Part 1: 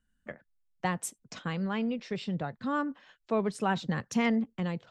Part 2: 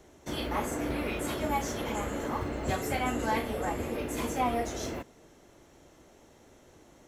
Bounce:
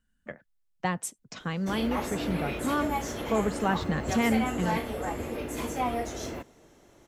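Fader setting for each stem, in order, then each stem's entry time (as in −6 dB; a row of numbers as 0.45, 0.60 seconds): +1.5, −0.5 decibels; 0.00, 1.40 seconds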